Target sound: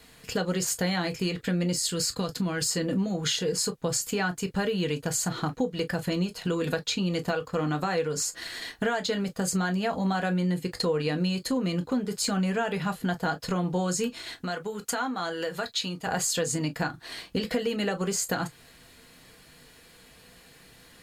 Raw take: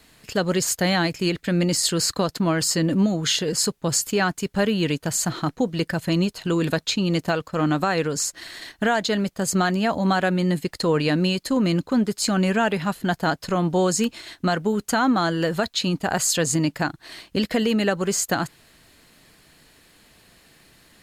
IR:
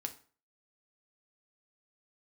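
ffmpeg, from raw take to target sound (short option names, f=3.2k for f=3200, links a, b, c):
-filter_complex "[0:a]asettb=1/sr,asplit=3[a][b][c];[a]atrim=end=1.734[d];[b]atrim=start=1.73:end=2.66,asetpts=PTS-STARTPTS,afade=t=in:d=0.004:c=qsin,afade=t=out:st=0.926:d=0.004:c=qsin,equalizer=f=750:w=0.47:g=-7[e];[c]atrim=start=2.656[f];[d][e]acrossfade=d=0.004:c1=hsin:c2=qsin[g];[g][f]acrossfade=d=0.004:c1=qsin:c2=hsin[h];[1:a]atrim=start_sample=2205,afade=t=out:st=0.13:d=0.01,atrim=end_sample=6174,asetrate=74970,aresample=44100[i];[h][i]afir=irnorm=-1:irlink=0,acompressor=threshold=-33dB:ratio=3,asettb=1/sr,asplit=3[j][k][l];[j]atrim=end=14.424[m];[k]atrim=start=14.42:end=16.07,asetpts=PTS-STARTPTS,afade=t=in:d=0.004:c=qsin,afade=t=out:st=1.646:d=0.004:c=qsin,lowshelf=f=480:g=-8.5[n];[l]atrim=start=16.066[o];[m][n]acrossfade=d=0.004:c1=hsin:c2=qsin[p];[p][o]acrossfade=d=0.004:c1=qsin:c2=hsin,volume=6.5dB"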